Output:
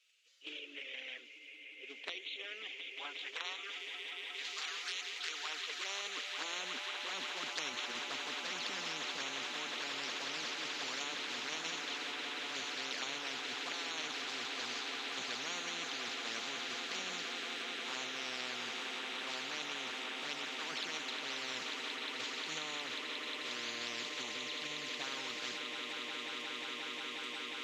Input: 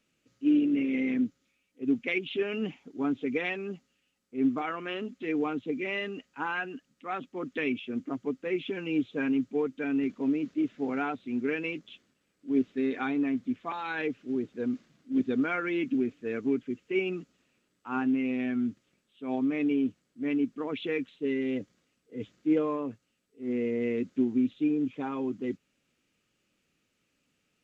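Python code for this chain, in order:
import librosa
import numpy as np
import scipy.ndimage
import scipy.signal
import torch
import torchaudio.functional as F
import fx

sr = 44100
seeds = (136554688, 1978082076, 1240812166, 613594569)

p1 = fx.tilt_eq(x, sr, slope=4.0)
p2 = fx.level_steps(p1, sr, step_db=10)
p3 = p1 + F.gain(torch.from_numpy(p2), -0.5).numpy()
p4 = fx.filter_sweep_highpass(p3, sr, from_hz=3200.0, to_hz=69.0, start_s=4.85, end_s=7.43, q=1.6)
p5 = fx.env_flanger(p4, sr, rest_ms=6.4, full_db=-26.0)
p6 = fx.filter_sweep_bandpass(p5, sr, from_hz=450.0, to_hz=3300.0, start_s=2.64, end_s=4.6, q=2.9)
p7 = p6 + fx.echo_swell(p6, sr, ms=179, loudest=8, wet_db=-17.5, dry=0)
p8 = fx.spectral_comp(p7, sr, ratio=10.0)
y = F.gain(torch.from_numpy(p8), -2.0).numpy()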